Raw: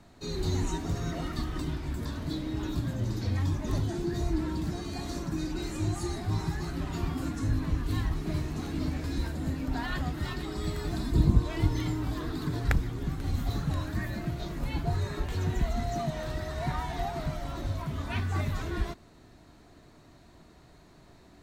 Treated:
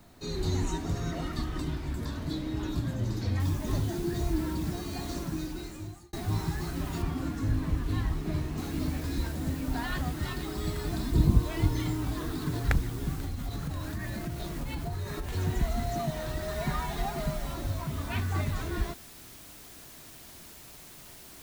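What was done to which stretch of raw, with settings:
0:03.40: noise floor change −67 dB −50 dB
0:05.21–0:06.13: fade out
0:07.02–0:08.58: high-shelf EQ 5,000 Hz −8.5 dB
0:13.20–0:15.33: downward compressor, threshold −30 dBFS
0:16.42–0:17.54: comb filter 4.9 ms

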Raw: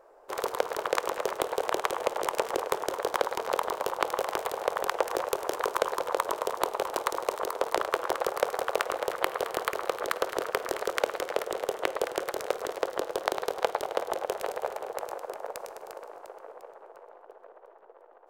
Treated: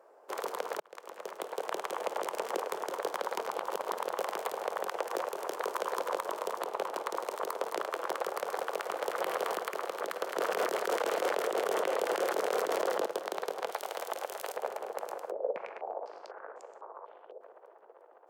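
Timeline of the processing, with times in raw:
0:00.80–0:02.09: fade in
0:03.51–0:04.11: reverse
0:05.36–0:05.88: delay throw 310 ms, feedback 35%, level −11 dB
0:06.64–0:07.17: high-shelf EQ 4,900 Hz −6 dB
0:07.95–0:08.60: delay throw 470 ms, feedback 80%, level −12.5 dB
0:09.15–0:09.59: clip gain +6 dB
0:10.36–0:13.06: envelope flattener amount 100%
0:13.71–0:14.56: spectral tilt +3 dB per octave
0:15.31–0:17.41: low-pass on a step sequencer 4 Hz 520–7,100 Hz
whole clip: Butterworth high-pass 170 Hz 48 dB per octave; brickwall limiter −18 dBFS; notch filter 3,800 Hz, Q 27; level −2.5 dB

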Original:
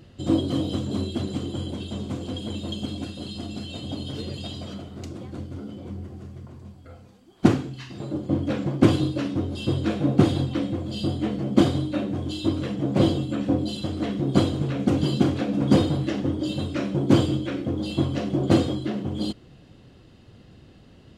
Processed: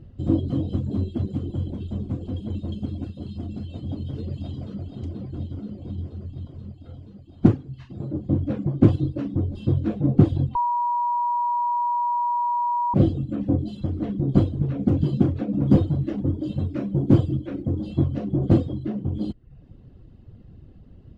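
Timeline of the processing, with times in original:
0:03.93–0:04.80: delay throw 480 ms, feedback 80%, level −7 dB
0:10.55–0:12.94: beep over 961 Hz −11.5 dBFS
0:15.66–0:17.83: floating-point word with a short mantissa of 4 bits
whole clip: reverb reduction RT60 0.57 s; spectral tilt −4 dB per octave; level −7 dB

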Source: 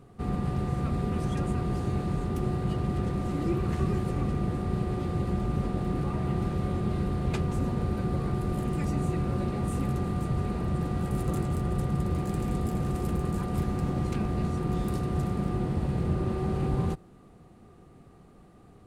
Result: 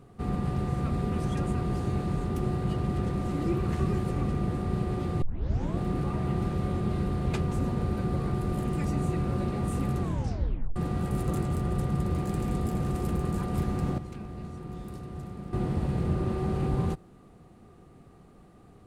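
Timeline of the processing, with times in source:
0:05.22: tape start 0.56 s
0:10.01: tape stop 0.75 s
0:13.98–0:15.53: clip gain −10.5 dB

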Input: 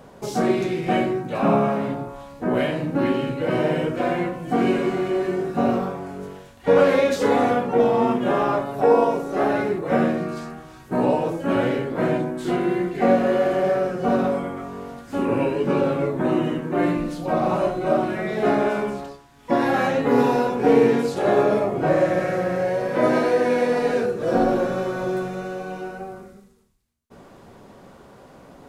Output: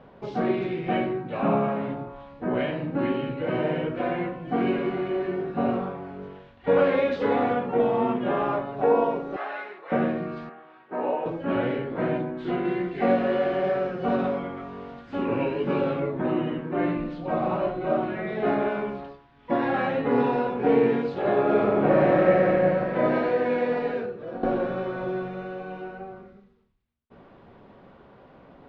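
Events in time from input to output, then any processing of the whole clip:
0:09.36–0:09.92: high-pass filter 1,000 Hz
0:10.49–0:11.26: band-pass filter 410–2,700 Hz
0:12.65–0:16.00: high-shelf EQ 4,300 Hz +11 dB
0:21.42–0:22.48: thrown reverb, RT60 2.8 s, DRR −4.5 dB
0:23.72–0:24.43: fade out linear, to −14.5 dB
whole clip: low-pass filter 3,500 Hz 24 dB per octave; level −4.5 dB

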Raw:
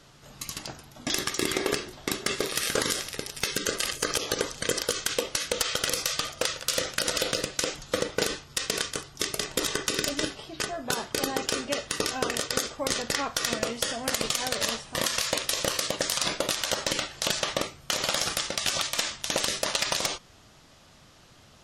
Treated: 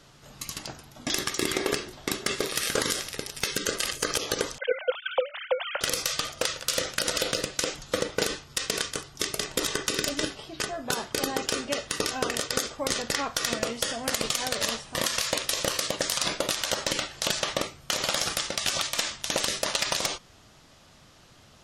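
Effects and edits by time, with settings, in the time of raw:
0:04.58–0:05.81: three sine waves on the formant tracks

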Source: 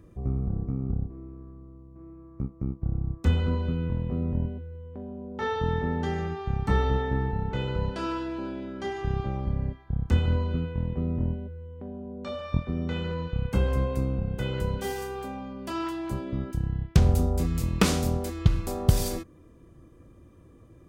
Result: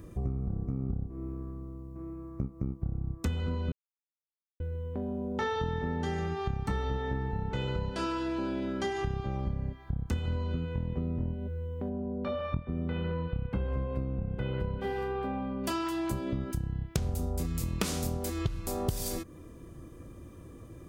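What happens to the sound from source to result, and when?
0:03.72–0:04.60: silence
0:11.89–0:15.64: high-frequency loss of the air 420 metres
whole clip: high-shelf EQ 5,300 Hz +7.5 dB; downward compressor 6 to 1, threshold −34 dBFS; level +5 dB

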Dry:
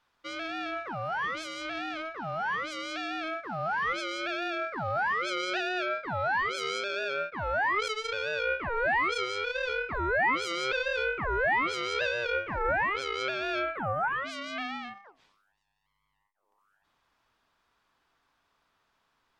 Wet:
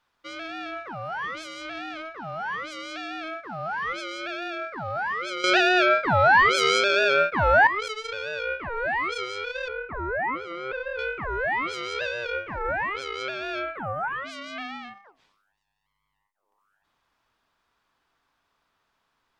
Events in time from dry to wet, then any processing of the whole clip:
0:05.44–0:07.67: clip gain +11.5 dB
0:09.68–0:10.99: low-pass filter 1,700 Hz

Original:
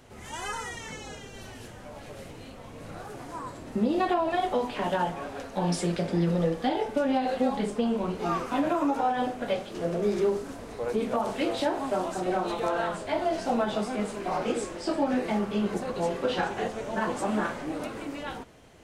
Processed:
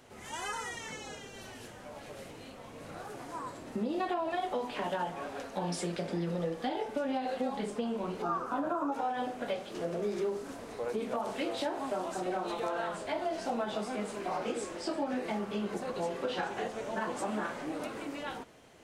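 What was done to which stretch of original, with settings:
0:08.22–0:08.92: high shelf with overshoot 1,700 Hz −6.5 dB, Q 3
whole clip: low-shelf EQ 120 Hz −11 dB; downward compressor 2 to 1, threshold −31 dBFS; level −2 dB

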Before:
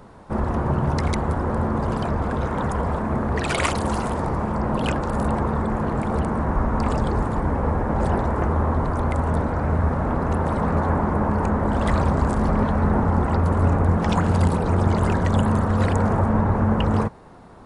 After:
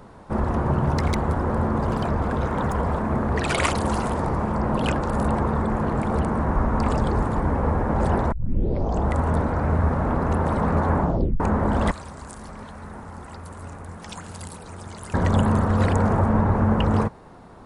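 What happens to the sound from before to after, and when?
0:00.86–0:03.29: running median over 3 samples
0:08.32: tape start 0.84 s
0:11.00: tape stop 0.40 s
0:11.91–0:15.14: first-order pre-emphasis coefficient 0.9

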